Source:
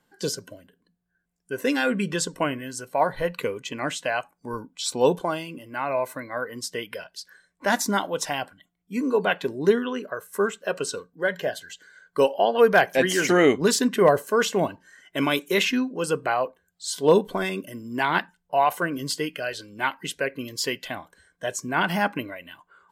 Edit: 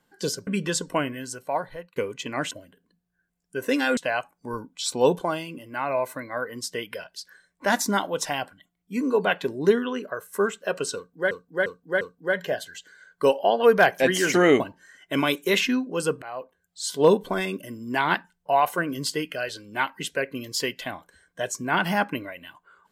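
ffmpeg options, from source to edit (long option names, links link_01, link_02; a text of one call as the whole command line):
ffmpeg -i in.wav -filter_complex "[0:a]asplit=10[link_01][link_02][link_03][link_04][link_05][link_06][link_07][link_08][link_09][link_10];[link_01]atrim=end=0.472[link_11];[link_02]atrim=start=1.928:end=3.42,asetpts=PTS-STARTPTS,afade=type=out:start_time=0.772:duration=0.72[link_12];[link_03]atrim=start=3.42:end=3.972,asetpts=PTS-STARTPTS,afade=type=in:duration=0.004:curve=hsin[link_13];[link_04]atrim=start=0.468:end=1.932[link_14];[link_05]atrim=start=3.968:end=11.312[link_15];[link_06]atrim=start=10.958:end=11.312[link_16];[link_07]atrim=start=10.958:end=11.312[link_17];[link_08]atrim=start=10.958:end=13.552[link_18];[link_09]atrim=start=14.638:end=16.26,asetpts=PTS-STARTPTS,afade=type=out:start_time=1.618:duration=0.004:curve=hsin:silence=0.112202[link_19];[link_10]atrim=start=16.26,asetpts=PTS-STARTPTS,afade=type=in:duration=0.6:silence=0.112202[link_20];[link_12][link_13]concat=n=2:v=0:a=1[link_21];[link_11][link_21]acrossfade=duration=0.004:curve1=hsin:curve2=hsin[link_22];[link_22][link_14]acrossfade=duration=0.004:curve1=hsin:curve2=hsin[link_23];[link_23][link_15]acrossfade=duration=0.004:curve1=hsin:curve2=hsin[link_24];[link_24][link_16]acrossfade=duration=0.004:curve1=hsin:curve2=hsin[link_25];[link_25][link_17]acrossfade=duration=0.004:curve1=hsin:curve2=hsin[link_26];[link_26][link_18]acrossfade=duration=0.004:curve1=hsin:curve2=hsin[link_27];[link_19][link_20]concat=n=2:v=0:a=1[link_28];[link_27][link_28]acrossfade=duration=0.004:curve1=hsin:curve2=hsin" out.wav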